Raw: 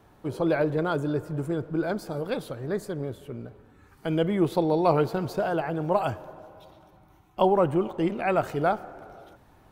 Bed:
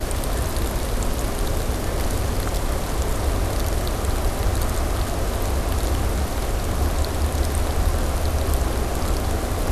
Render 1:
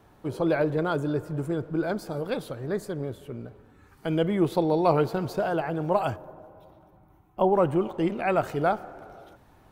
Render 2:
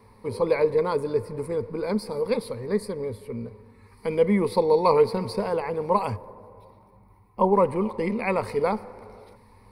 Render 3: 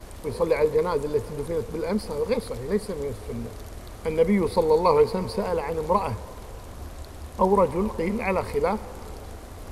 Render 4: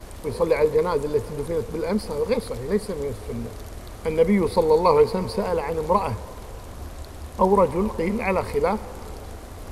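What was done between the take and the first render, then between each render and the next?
0:06.16–0:07.53: parametric band 4,900 Hz −12.5 dB 2.7 octaves
EQ curve with evenly spaced ripples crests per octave 0.91, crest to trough 16 dB
mix in bed −17 dB
level +2 dB

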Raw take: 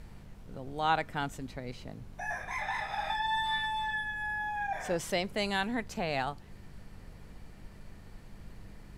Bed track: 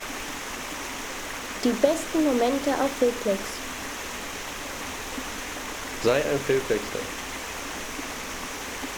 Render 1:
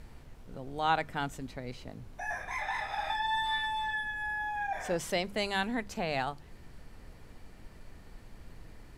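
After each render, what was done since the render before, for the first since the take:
hum removal 50 Hz, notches 4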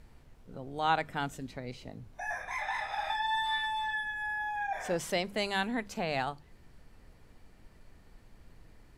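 noise reduction from a noise print 6 dB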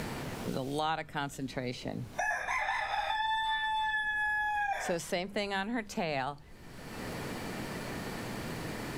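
multiband upward and downward compressor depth 100%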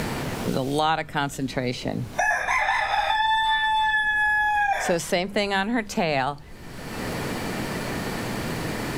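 level +10 dB

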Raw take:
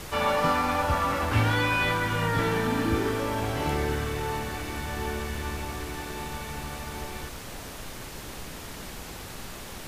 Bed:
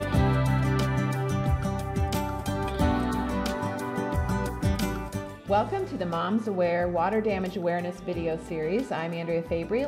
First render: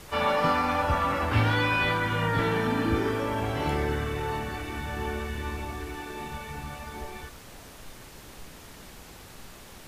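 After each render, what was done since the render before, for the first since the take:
noise reduction from a noise print 7 dB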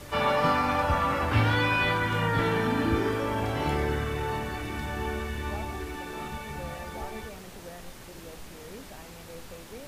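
mix in bed −18 dB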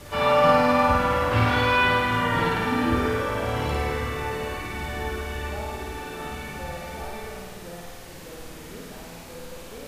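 flutter between parallel walls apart 9 metres, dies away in 1.3 s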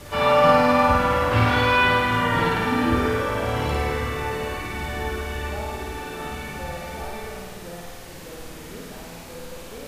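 level +2 dB

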